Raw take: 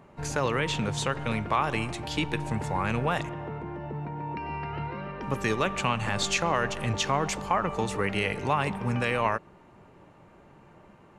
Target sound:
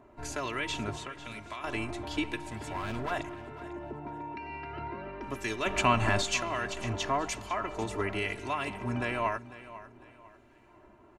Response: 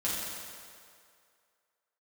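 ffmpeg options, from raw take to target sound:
-filter_complex "[0:a]asplit=3[link_01][link_02][link_03];[link_01]afade=type=out:start_time=5.65:duration=0.02[link_04];[link_02]acontrast=77,afade=type=in:start_time=5.65:duration=0.02,afade=type=out:start_time=6.2:duration=0.02[link_05];[link_03]afade=type=in:start_time=6.2:duration=0.02[link_06];[link_04][link_05][link_06]amix=inputs=3:normalize=0,acrossover=split=1700[link_07][link_08];[link_07]aeval=exprs='val(0)*(1-0.5/2+0.5/2*cos(2*PI*1*n/s))':channel_layout=same[link_09];[link_08]aeval=exprs='val(0)*(1-0.5/2-0.5/2*cos(2*PI*1*n/s))':channel_layout=same[link_10];[link_09][link_10]amix=inputs=2:normalize=0,asettb=1/sr,asplit=3[link_11][link_12][link_13];[link_11]atrim=end=0.964[link_14];[link_12]atrim=start=0.96:end=1.64,asetpts=PTS-STARTPTS,afade=type=in:duration=0.004:curve=qsin,afade=type=out:start_time=0.676:duration=0.004:curve=qsin,acrossover=split=1200|3700[link_15][link_16][link_17];[link_15]acompressor=threshold=-40dB:ratio=4[link_18];[link_16]acompressor=threshold=-43dB:ratio=4[link_19];[link_17]acompressor=threshold=-46dB:ratio=4[link_20];[link_18][link_19][link_20]amix=inputs=3:normalize=0[link_21];[link_13]atrim=start=1.636[link_22];[link_14][link_21]acrossfade=duration=0.004:curve1=hsin:curve2=qsin[link_23];[link_23][link_22]acrossfade=duration=0.004:curve1=qsin:curve2=hsin,asplit=3[link_24][link_25][link_26];[link_24]afade=type=out:start_time=2.47:duration=0.02[link_27];[link_25]volume=27.5dB,asoftclip=hard,volume=-27.5dB,afade=type=in:start_time=2.47:duration=0.02,afade=type=out:start_time=3.1:duration=0.02[link_28];[link_26]afade=type=in:start_time=3.1:duration=0.02[link_29];[link_27][link_28][link_29]amix=inputs=3:normalize=0,aecho=1:1:3:0.81,aecho=1:1:498|996|1494:0.158|0.0539|0.0183,volume=-4dB"

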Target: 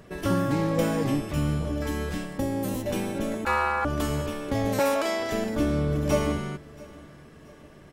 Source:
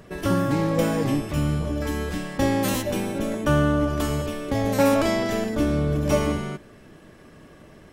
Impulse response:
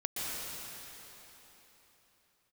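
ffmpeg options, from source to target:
-filter_complex "[0:a]asettb=1/sr,asplit=3[link_01][link_02][link_03];[link_01]atrim=end=2.244[link_04];[link_02]atrim=start=2.24:end=2.86,asetpts=PTS-STARTPTS,afade=type=in:duration=0.004:curve=qsin,afade=type=out:start_time=0.616:duration=0.004:curve=qsin,acrossover=split=780|7700[link_05][link_06][link_07];[link_05]acompressor=threshold=-22dB:ratio=4[link_08];[link_06]acompressor=threshold=-43dB:ratio=4[link_09];[link_07]acompressor=threshold=-39dB:ratio=4[link_10];[link_08][link_09][link_10]amix=inputs=3:normalize=0[link_11];[link_03]atrim=start=2.856[link_12];[link_04][link_11]acrossfade=duration=0.004:curve1=hsin:curve2=qsin[link_13];[link_13][link_12]acrossfade=duration=0.004:curve1=qsin:curve2=hsin,asettb=1/sr,asplit=3[link_14][link_15][link_16];[link_14]atrim=end=3.454[link_17];[link_15]atrim=start=3.45:end=3.85,asetpts=PTS-STARTPTS,afade=type=in:duration=0.004:curve=qsin,afade=type=out:start_time=0.396:duration=0.004:curve=qsin,aeval=exprs='val(0)*sin(2*PI*1100*n/s)':channel_layout=same[link_18];[link_16]atrim=start=3.846[link_19];[link_17][link_18]acrossfade=duration=0.004:curve1=hsin:curve2=qsin[link_20];[link_20][link_19]acrossfade=duration=0.004:curve1=qsin:curve2=hsin,asettb=1/sr,asplit=3[link_21][link_22][link_23];[link_21]atrim=end=4.794[link_24];[link_22]atrim=start=4.79:end=5.32,asetpts=PTS-STARTPTS,afade=type=in:duration=0.004:curve=qsin,afade=type=out:start_time=0.526:duration=0.004:curve=qsin,highpass=430[link_25];[link_23]atrim=start=5.316[link_26];[link_24][link_25]acrossfade=duration=0.004:curve1=hsin:curve2=qsin[link_27];[link_27][link_26]acrossfade=duration=0.004:curve1=qsin:curve2=hsin,aecho=1:1:679|1358|2037:0.075|0.0337|0.0152,volume=-2.5dB"

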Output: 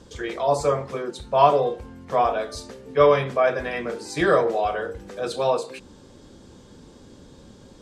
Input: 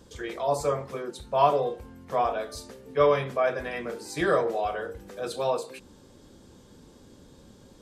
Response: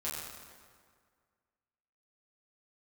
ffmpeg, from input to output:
-af "lowpass=8400,volume=5dB"

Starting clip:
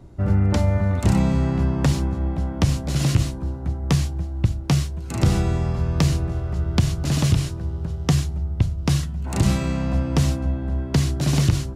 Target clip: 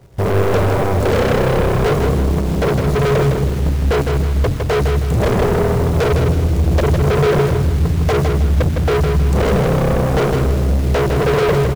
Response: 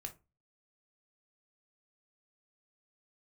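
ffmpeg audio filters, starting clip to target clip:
-af "afwtdn=0.0794,acontrast=69,equalizer=frequency=140:width_type=o:width=1.3:gain=10,aeval=exprs='1.88*sin(PI/2*3.98*val(0)/1.88)':channel_layout=same,lowshelf=frequency=360:width_type=q:width=3:gain=-6.5,acrusher=bits=3:mode=log:mix=0:aa=0.000001,volume=8dB,asoftclip=hard,volume=-8dB,aecho=1:1:158|316|474|632:0.562|0.202|0.0729|0.0262,volume=-6.5dB"

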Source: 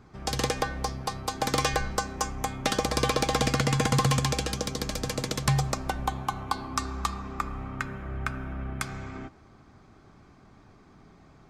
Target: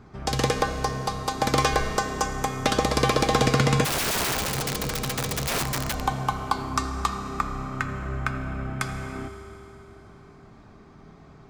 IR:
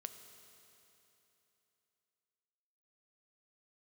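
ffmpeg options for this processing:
-filter_complex "[0:a]highshelf=frequency=3500:gain=-4.5[link_01];[1:a]atrim=start_sample=2205[link_02];[link_01][link_02]afir=irnorm=-1:irlink=0,asplit=3[link_03][link_04][link_05];[link_03]afade=type=out:start_time=3.84:duration=0.02[link_06];[link_04]aeval=exprs='(mod(31.6*val(0)+1,2)-1)/31.6':channel_layout=same,afade=type=in:start_time=3.84:duration=0.02,afade=type=out:start_time=6.02:duration=0.02[link_07];[link_05]afade=type=in:start_time=6.02:duration=0.02[link_08];[link_06][link_07][link_08]amix=inputs=3:normalize=0,volume=9dB"

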